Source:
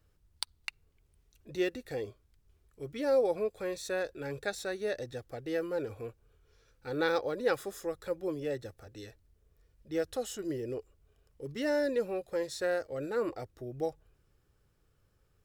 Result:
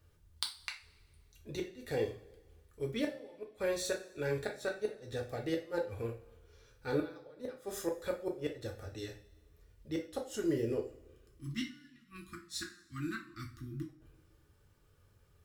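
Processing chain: inverted gate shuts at -25 dBFS, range -28 dB; spectral selection erased 10.97–13.89 s, 360–1000 Hz; two-slope reverb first 0.32 s, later 1.5 s, from -21 dB, DRR 0 dB; trim +1 dB

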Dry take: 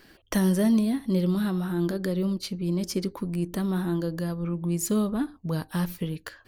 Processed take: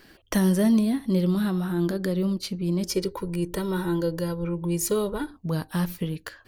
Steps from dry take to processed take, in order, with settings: 2.89–5.31 s: comb 2.1 ms, depth 88%; trim +1.5 dB

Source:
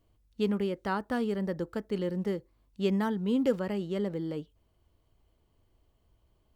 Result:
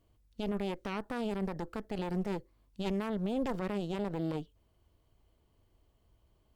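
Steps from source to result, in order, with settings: Chebyshev shaper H 4 -6 dB, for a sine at -14.5 dBFS; peak limiter -24.5 dBFS, peak gain reduction 14 dB

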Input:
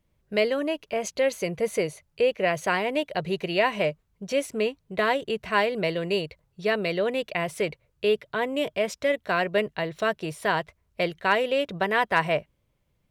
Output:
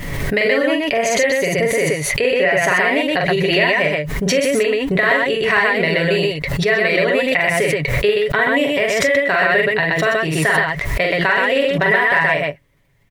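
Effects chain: peaking EQ 1.9 kHz +12.5 dB 0.31 oct; comb 7.2 ms, depth 50%; compression, threshold -21 dBFS, peak gain reduction 10 dB; on a send: loudspeakers at several distances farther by 15 m -3 dB, 43 m -1 dB; on the sum: swell ahead of each attack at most 33 dB/s; trim +6.5 dB

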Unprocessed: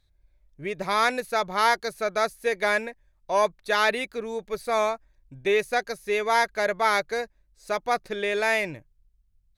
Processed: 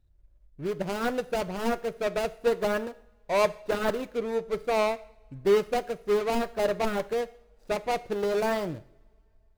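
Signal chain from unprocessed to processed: median filter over 41 samples; two-slope reverb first 0.57 s, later 2.7 s, from -25 dB, DRR 13.5 dB; trim +3 dB

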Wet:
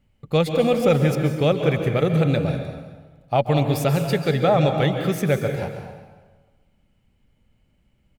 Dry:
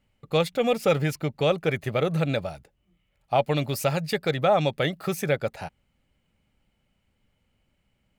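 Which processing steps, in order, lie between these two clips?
bass shelf 360 Hz +8 dB; on a send: feedback delay 189 ms, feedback 40%, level -19 dB; on the sum: plate-style reverb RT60 1.3 s, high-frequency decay 0.75×, pre-delay 120 ms, DRR 5.5 dB

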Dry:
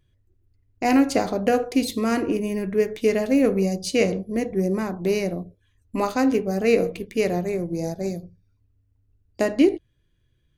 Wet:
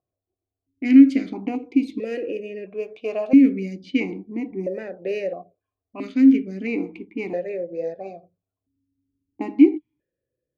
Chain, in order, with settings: level-controlled noise filter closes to 670 Hz, open at -18 dBFS; 1.55–3.05 s: high-order bell 1.1 kHz -9 dB; stepped vowel filter 1.5 Hz; trim +8.5 dB

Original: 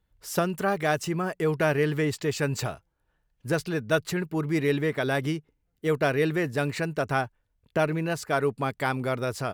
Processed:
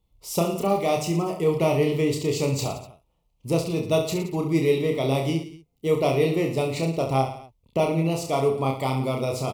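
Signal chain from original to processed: Butterworth band-stop 1.6 kHz, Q 1.5; reverse bouncing-ball echo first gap 30 ms, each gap 1.25×, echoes 5; trim +1.5 dB

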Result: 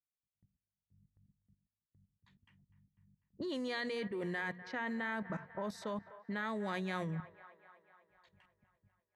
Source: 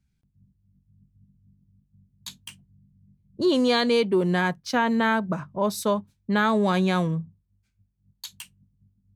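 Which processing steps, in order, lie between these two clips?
level-controlled noise filter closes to 1.1 kHz, open at -18.5 dBFS; gate with hold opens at -52 dBFS; peaking EQ 1.9 kHz +14.5 dB 0.27 oct; hum notches 60/120/180/240 Hz; level held to a coarse grid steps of 15 dB; on a send: feedback echo behind a band-pass 248 ms, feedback 62%, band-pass 1.1 kHz, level -13.5 dB; on the sum: trim -8 dB

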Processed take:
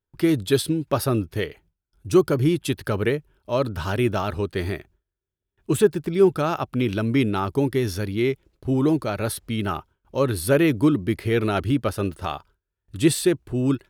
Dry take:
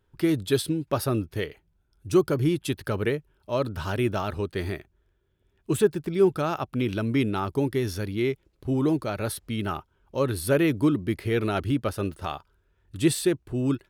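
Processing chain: gate with hold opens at -56 dBFS; trim +3.5 dB

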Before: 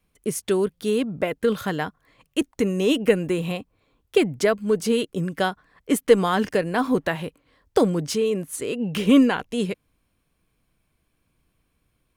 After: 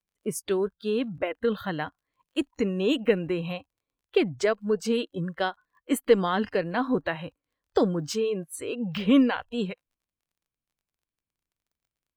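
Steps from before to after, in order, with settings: crackle 32 per s -37 dBFS; spectral noise reduction 20 dB; trim -4 dB

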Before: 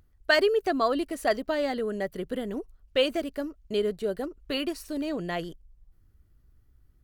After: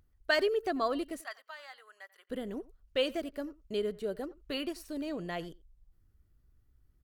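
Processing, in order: 1.21–2.30 s: ladder high-pass 930 Hz, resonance 35%; speakerphone echo 90 ms, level -20 dB; trim -6 dB

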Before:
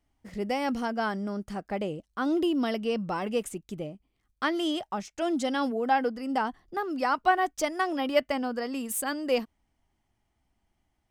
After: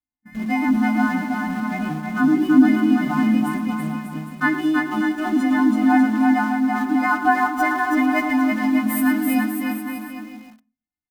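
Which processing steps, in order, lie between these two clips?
partials quantised in pitch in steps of 3 st; gate -45 dBFS, range -24 dB; FFT filter 100 Hz 0 dB, 200 Hz +4 dB, 290 Hz +14 dB, 450 Hz -29 dB, 730 Hz -1 dB, 1.1 kHz 0 dB, 2 kHz +2 dB, 2.9 kHz -14 dB, 6.9 kHz -22 dB, 13 kHz -10 dB; in parallel at -5.5 dB: small samples zeroed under -33 dBFS; on the sum: vibrato 9.8 Hz 12 cents; bouncing-ball echo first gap 330 ms, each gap 0.8×, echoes 5; reverberation RT60 0.35 s, pre-delay 3 ms, DRR 10 dB; bit-crushed delay 110 ms, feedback 35%, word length 7-bit, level -12 dB

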